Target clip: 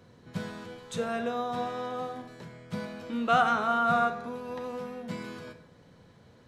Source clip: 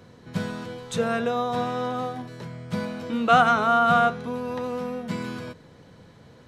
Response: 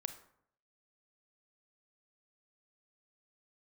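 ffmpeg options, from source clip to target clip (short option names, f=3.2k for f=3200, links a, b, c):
-filter_complex "[0:a]asettb=1/sr,asplit=3[a][b][c];[a]atrim=end=3.834[d];[b]atrim=start=3.83:end=4.33,asetpts=PTS-STARTPTS,afade=t=in:d=0.004:c=qsin,afade=t=out:st=0.496:d=0.004:c=qsin,bandreject=f=3.1k:w=6.7[e];[c]atrim=start=4.326[f];[d][e]acrossfade=d=0.004:c1=hsin:c2=qsin[g];[g][f]acrossfade=d=0.004:c1=qsin:c2=hsin[h];[1:a]atrim=start_sample=2205[i];[h][i]afir=irnorm=-1:irlink=0,volume=-4.5dB"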